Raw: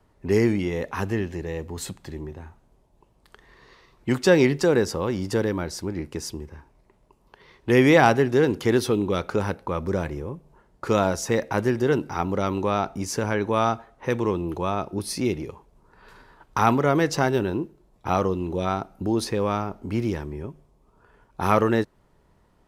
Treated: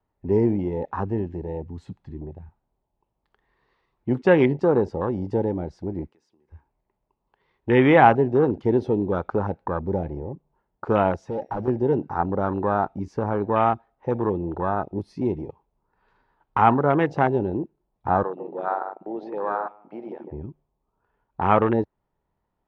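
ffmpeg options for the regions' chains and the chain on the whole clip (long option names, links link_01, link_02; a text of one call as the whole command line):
ffmpeg -i in.wav -filter_complex "[0:a]asettb=1/sr,asplit=3[link_01][link_02][link_03];[link_01]atrim=end=6.074[link_04];[link_02]atrim=start=6.07:end=6.5,asetpts=PTS-STARTPTS,afade=type=in:duration=0.004:curve=qsin,afade=type=out:start_time=0.426:duration=0.004:curve=qsin,highpass=220,acompressor=threshold=-47dB:ratio=3:attack=3.2:release=140:knee=1:detection=peak[link_05];[link_03]atrim=start=6.496[link_06];[link_04][link_05]acrossfade=duration=0.004:curve1=hsin:curve2=qsin[link_07];[link_07][link_06]acrossfade=duration=0.004:curve1=qsin:curve2=hsin,asettb=1/sr,asplit=3[link_08][link_09][link_10];[link_08]atrim=end=11.184[link_11];[link_09]atrim=start=11.18:end=11.68,asetpts=PTS-STARTPTS,afade=type=in:duration=0.004:curve=qsin,afade=type=out:start_time=0.496:duration=0.004:curve=qsin,highpass=74,volume=25dB,asoftclip=hard,volume=-25dB,aeval=exprs='val(0)+0.00141*sin(2*PI*5600*n/s)':channel_layout=same[link_12];[link_10]atrim=start=11.676[link_13];[link_11][link_12]acrossfade=duration=0.004:curve1=hsin:curve2=qsin[link_14];[link_14][link_13]acrossfade=duration=0.004:curve1=qsin:curve2=hsin,asettb=1/sr,asplit=3[link_15][link_16][link_17];[link_15]atrim=end=18.234[link_18];[link_16]atrim=start=18.23:end=20.32,asetpts=PTS-STARTPTS,afade=type=in:duration=0.004:curve=qsin,afade=type=out:start_time=2.086:duration=0.004:curve=qsin,highpass=530,lowpass=3000,asplit=2[link_19][link_20];[link_20]adelay=148,lowpass=frequency=1000:poles=1,volume=-5dB,asplit=2[link_21][link_22];[link_22]adelay=148,lowpass=frequency=1000:poles=1,volume=0.35,asplit=2[link_23][link_24];[link_24]adelay=148,lowpass=frequency=1000:poles=1,volume=0.35,asplit=2[link_25][link_26];[link_26]adelay=148,lowpass=frequency=1000:poles=1,volume=0.35[link_27];[link_19][link_21][link_23][link_25][link_27]amix=inputs=5:normalize=0,atrim=end_sample=92169[link_28];[link_17]atrim=start=20.316[link_29];[link_18][link_28]acrossfade=duration=0.004:curve1=hsin:curve2=qsin[link_30];[link_30][link_29]acrossfade=duration=0.004:curve1=qsin:curve2=hsin,afwtdn=0.0447,lowpass=3500,equalizer=frequency=830:width=3.2:gain=6" out.wav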